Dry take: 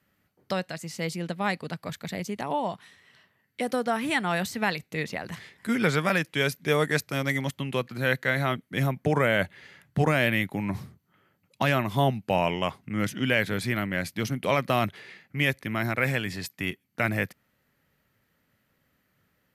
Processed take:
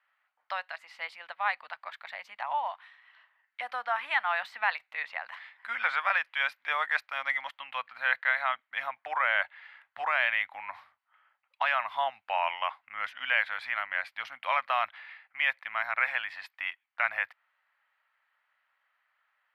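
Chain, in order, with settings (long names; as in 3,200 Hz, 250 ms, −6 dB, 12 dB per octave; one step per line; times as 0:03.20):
inverse Chebyshev high-pass filter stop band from 420 Hz, stop band 40 dB
high-frequency loss of the air 450 metres
level +4.5 dB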